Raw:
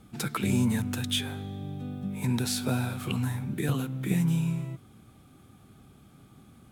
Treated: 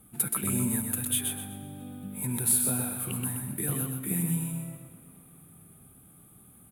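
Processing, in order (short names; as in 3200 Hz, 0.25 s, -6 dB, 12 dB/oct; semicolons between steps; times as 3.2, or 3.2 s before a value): resonant high shelf 7700 Hz +13.5 dB, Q 3; feedback echo 0.126 s, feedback 32%, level -5 dB; on a send at -17 dB: reverb RT60 5.7 s, pre-delay 0.109 s; on the sum: gain -5.5 dB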